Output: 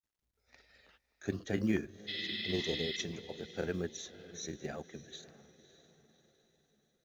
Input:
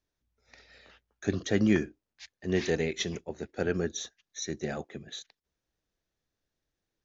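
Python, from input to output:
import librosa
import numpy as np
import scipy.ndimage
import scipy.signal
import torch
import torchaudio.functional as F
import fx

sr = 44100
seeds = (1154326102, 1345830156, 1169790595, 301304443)

p1 = fx.spec_repair(x, sr, seeds[0], start_s=2.09, length_s=0.87, low_hz=1300.0, high_hz=5400.0, source='after')
p2 = p1 + fx.echo_diffused(p1, sr, ms=587, feedback_pct=43, wet_db=-15.5, dry=0)
p3 = fx.granulator(p2, sr, seeds[1], grain_ms=100.0, per_s=20.0, spray_ms=17.0, spread_st=0)
p4 = fx.quant_companded(p3, sr, bits=8)
y = p4 * 10.0 ** (-6.0 / 20.0)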